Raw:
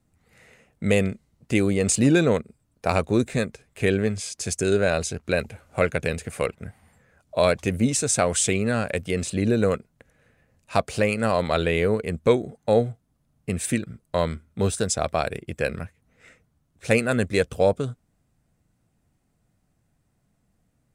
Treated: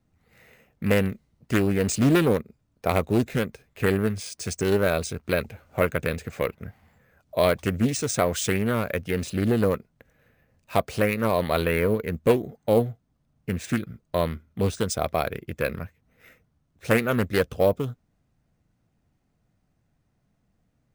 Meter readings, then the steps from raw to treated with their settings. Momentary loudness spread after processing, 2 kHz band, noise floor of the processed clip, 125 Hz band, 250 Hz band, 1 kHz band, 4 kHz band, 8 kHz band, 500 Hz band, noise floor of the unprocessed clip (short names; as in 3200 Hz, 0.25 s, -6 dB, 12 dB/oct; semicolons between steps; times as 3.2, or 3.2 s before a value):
10 LU, -1.5 dB, -71 dBFS, -0.5 dB, -1.0 dB, -0.5 dB, -2.0 dB, -6.5 dB, -1.0 dB, -70 dBFS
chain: careless resampling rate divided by 3×, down filtered, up hold; Doppler distortion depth 0.43 ms; gain -1 dB